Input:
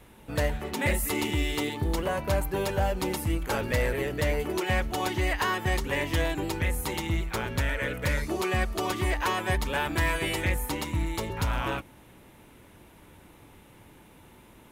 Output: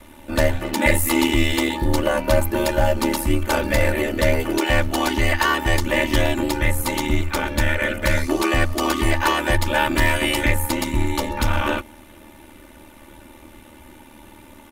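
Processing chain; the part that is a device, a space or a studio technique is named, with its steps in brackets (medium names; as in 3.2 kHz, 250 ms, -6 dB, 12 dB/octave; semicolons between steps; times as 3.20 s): ring-modulated robot voice (ring modulator 38 Hz; comb 3.4 ms, depth 85%); trim +9 dB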